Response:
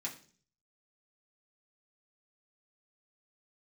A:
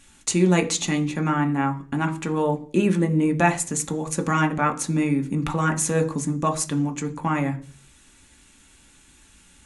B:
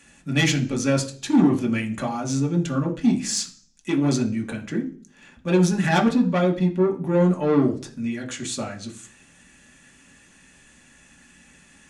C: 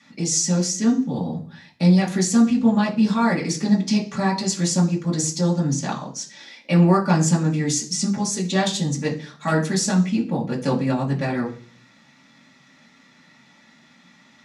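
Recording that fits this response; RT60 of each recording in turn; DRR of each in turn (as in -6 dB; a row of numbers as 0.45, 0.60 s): C; 0.45, 0.45, 0.45 s; 4.0, -0.5, -4.5 dB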